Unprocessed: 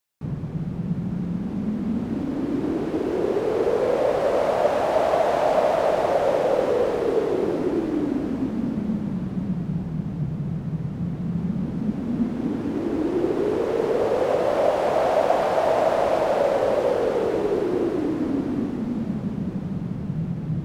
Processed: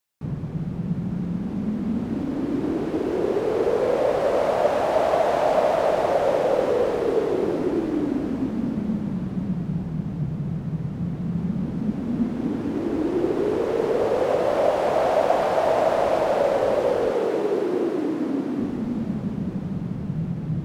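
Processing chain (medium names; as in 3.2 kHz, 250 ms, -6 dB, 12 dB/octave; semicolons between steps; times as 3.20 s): 17.12–18.60 s: high-pass 180 Hz 12 dB/octave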